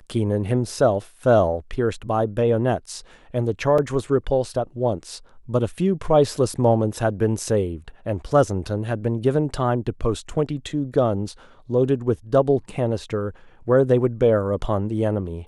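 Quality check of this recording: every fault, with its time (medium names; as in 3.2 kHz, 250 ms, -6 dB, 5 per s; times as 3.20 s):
3.78 s: dropout 3.9 ms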